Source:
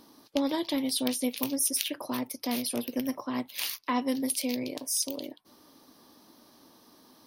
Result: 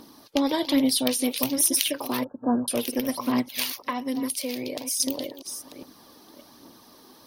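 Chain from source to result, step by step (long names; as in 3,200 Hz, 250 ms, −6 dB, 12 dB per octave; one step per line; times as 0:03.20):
delay that plays each chunk backwards 583 ms, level −13 dB
0:03.62–0:05.00: downward compressor 5 to 1, threshold −32 dBFS, peak gain reduction 9 dB
phase shifter 1.2 Hz, delay 2.8 ms, feedback 37%
0:02.24–0:02.68: linear-phase brick-wall low-pass 1,700 Hz
level +5.5 dB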